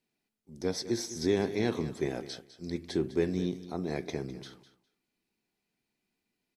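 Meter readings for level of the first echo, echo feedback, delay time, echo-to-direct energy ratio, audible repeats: −14.5 dB, 16%, 204 ms, −14.5 dB, 2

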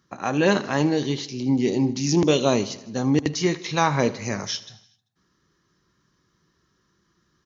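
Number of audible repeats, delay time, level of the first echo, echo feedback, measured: 4, 78 ms, −18.0 dB, 60%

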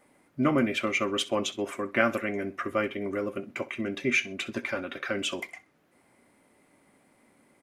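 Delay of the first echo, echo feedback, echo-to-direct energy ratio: 64 ms, 27%, −18.5 dB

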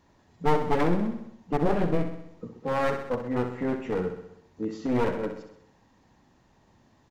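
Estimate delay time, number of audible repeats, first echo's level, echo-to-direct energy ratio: 64 ms, 6, −8.5 dB, −6.5 dB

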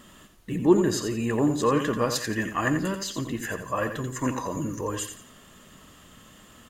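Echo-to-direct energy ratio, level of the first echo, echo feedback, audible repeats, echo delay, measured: −8.0 dB, −8.5 dB, 31%, 3, 87 ms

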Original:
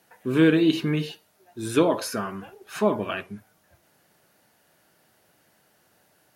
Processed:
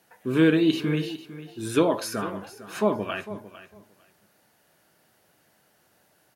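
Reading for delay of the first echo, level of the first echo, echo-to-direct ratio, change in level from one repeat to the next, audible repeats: 452 ms, −15.0 dB, −15.0 dB, −16.0 dB, 2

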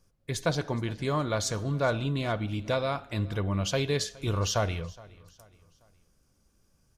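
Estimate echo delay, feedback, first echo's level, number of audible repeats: 417 ms, 42%, −22.5 dB, 2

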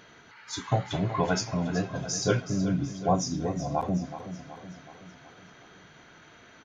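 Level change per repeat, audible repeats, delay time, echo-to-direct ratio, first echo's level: −5.5 dB, 5, 374 ms, −10.5 dB, −12.0 dB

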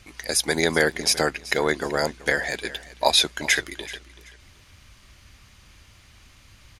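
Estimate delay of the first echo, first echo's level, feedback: 381 ms, −18.0 dB, 27%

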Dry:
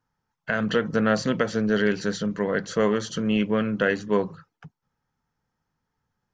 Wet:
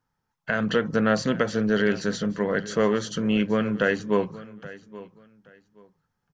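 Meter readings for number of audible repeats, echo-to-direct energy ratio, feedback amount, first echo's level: 2, −18.0 dB, 23%, −18.0 dB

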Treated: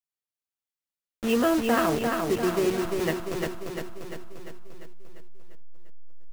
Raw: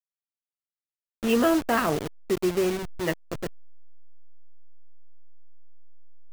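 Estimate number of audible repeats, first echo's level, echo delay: 7, −4.0 dB, 347 ms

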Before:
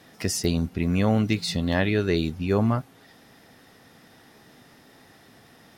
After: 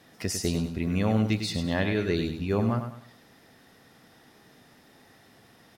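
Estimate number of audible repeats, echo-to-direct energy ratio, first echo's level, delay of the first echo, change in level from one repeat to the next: 3, −7.5 dB, −8.0 dB, 101 ms, −9.5 dB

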